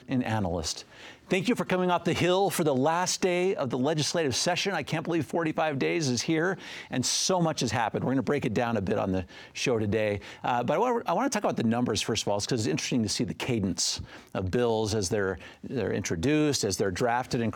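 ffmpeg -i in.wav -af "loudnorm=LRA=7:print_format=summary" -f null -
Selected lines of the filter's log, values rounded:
Input Integrated:    -27.7 LUFS
Input True Peak:     -11.4 dBTP
Input LRA:             1.8 LU
Input Threshold:     -37.8 LUFS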